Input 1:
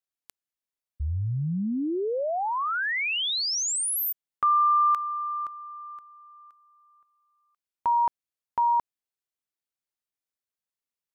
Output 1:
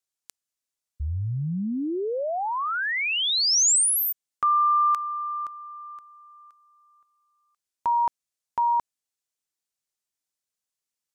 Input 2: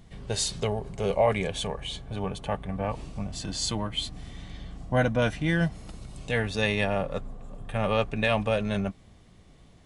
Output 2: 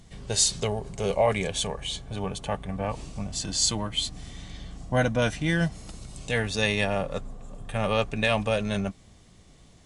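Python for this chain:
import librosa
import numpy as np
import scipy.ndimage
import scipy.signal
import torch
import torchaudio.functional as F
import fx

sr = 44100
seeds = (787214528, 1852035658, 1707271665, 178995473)

y = fx.peak_eq(x, sr, hz=7100.0, db=8.5, octaves=1.5)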